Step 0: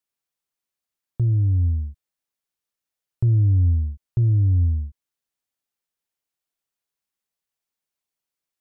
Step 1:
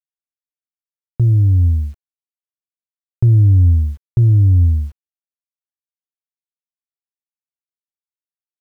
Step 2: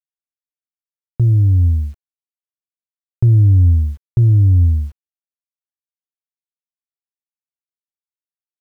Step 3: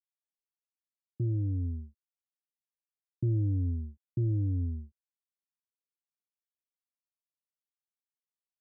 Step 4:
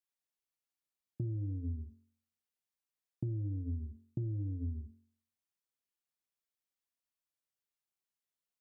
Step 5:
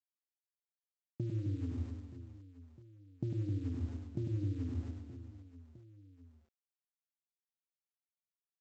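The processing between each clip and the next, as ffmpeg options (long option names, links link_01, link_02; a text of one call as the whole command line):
ffmpeg -i in.wav -af "acrusher=bits=9:mix=0:aa=0.000001,volume=7dB" out.wav
ffmpeg -i in.wav -af anull out.wav
ffmpeg -i in.wav -af "afftdn=noise_reduction=17:noise_floor=-30,agate=range=-33dB:threshold=-16dB:ratio=3:detection=peak,bandpass=frequency=360:width_type=q:width=1.2:csg=0,volume=-6.5dB" out.wav
ffmpeg -i in.wav -af "bandreject=frequency=45.4:width_type=h:width=4,bandreject=frequency=90.8:width_type=h:width=4,bandreject=frequency=136.2:width_type=h:width=4,bandreject=frequency=181.6:width_type=h:width=4,bandreject=frequency=227:width_type=h:width=4,bandreject=frequency=272.4:width_type=h:width=4,bandreject=frequency=317.8:width_type=h:width=4,bandreject=frequency=363.2:width_type=h:width=4,bandreject=frequency=408.6:width_type=h:width=4,bandreject=frequency=454:width_type=h:width=4,bandreject=frequency=499.4:width_type=h:width=4,bandreject=frequency=544.8:width_type=h:width=4,bandreject=frequency=590.2:width_type=h:width=4,bandreject=frequency=635.6:width_type=h:width=4,bandreject=frequency=681:width_type=h:width=4,bandreject=frequency=726.4:width_type=h:width=4,bandreject=frequency=771.8:width_type=h:width=4,bandreject=frequency=817.2:width_type=h:width=4,bandreject=frequency=862.6:width_type=h:width=4,bandreject=frequency=908:width_type=h:width=4,bandreject=frequency=953.4:width_type=h:width=4,bandreject=frequency=998.8:width_type=h:width=4,bandreject=frequency=1044.2:width_type=h:width=4,bandreject=frequency=1089.6:width_type=h:width=4,bandreject=frequency=1135:width_type=h:width=4,bandreject=frequency=1180.4:width_type=h:width=4,bandreject=frequency=1225.8:width_type=h:width=4,bandreject=frequency=1271.2:width_type=h:width=4,bandreject=frequency=1316.6:width_type=h:width=4,bandreject=frequency=1362:width_type=h:width=4,bandreject=frequency=1407.4:width_type=h:width=4,bandreject=frequency=1452.8:width_type=h:width=4,bandreject=frequency=1498.2:width_type=h:width=4,bandreject=frequency=1543.6:width_type=h:width=4,bandreject=frequency=1589:width_type=h:width=4,bandreject=frequency=1634.4:width_type=h:width=4,acompressor=threshold=-35dB:ratio=6,volume=1dB" out.wav
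ffmpeg -i in.wav -af "lowshelf=frequency=260:gain=-8.5,aresample=16000,aeval=exprs='val(0)*gte(abs(val(0)),0.00133)':channel_layout=same,aresample=44100,aecho=1:1:100|260|516|925.6|1581:0.631|0.398|0.251|0.158|0.1,volume=5.5dB" out.wav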